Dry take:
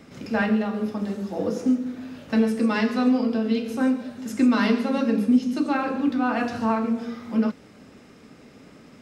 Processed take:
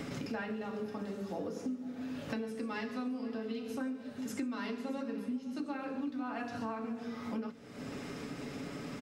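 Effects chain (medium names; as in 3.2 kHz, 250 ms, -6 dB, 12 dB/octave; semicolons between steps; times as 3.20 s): comb 7.1 ms, depth 39%; compression 6:1, threshold -47 dBFS, peak gain reduction 31 dB; multi-tap echo 502/619 ms -19/-19 dB; trim +8.5 dB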